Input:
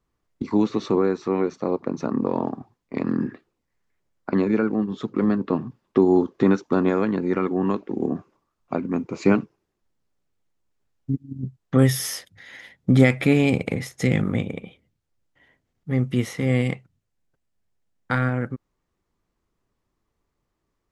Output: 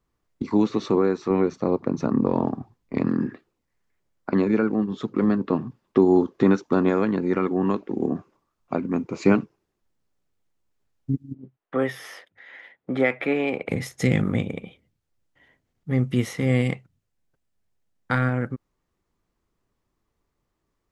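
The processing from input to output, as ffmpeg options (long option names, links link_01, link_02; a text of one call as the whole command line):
ffmpeg -i in.wav -filter_complex "[0:a]asettb=1/sr,asplit=3[link_01][link_02][link_03];[link_01]atrim=end=1.304[link_04];[link_02]atrim=start=1.3:end=3.08,asetpts=PTS-STARTPTS,afade=type=in:duration=0.004:curve=qsin,afade=type=out:start_time=1.776:duration=0.004:curve=qsin,lowshelf=frequency=140:gain=10.5[link_05];[link_03]atrim=start=3.076[link_06];[link_04][link_05]acrossfade=duration=0.004:curve1=hsin:curve2=qsin[link_07];[link_07][link_06]acrossfade=duration=0.004:curve1=qsin:curve2=hsin,asettb=1/sr,asplit=3[link_08][link_09][link_10];[link_08]atrim=end=11.344[link_11];[link_09]atrim=start=11.34:end=13.69,asetpts=PTS-STARTPTS,afade=type=in:duration=0.004:curve=qsin,afade=type=out:start_time=2.346:duration=0.004:curve=qsin,acrossover=split=320 2900:gain=0.0891 1 0.0891[link_12][link_13][link_14];[link_12][link_13][link_14]amix=inputs=3:normalize=0[link_15];[link_10]atrim=start=13.686[link_16];[link_11][link_15]acrossfade=duration=0.004:curve1=hsin:curve2=qsin[link_17];[link_17][link_16]acrossfade=duration=0.004:curve1=qsin:curve2=hsin" out.wav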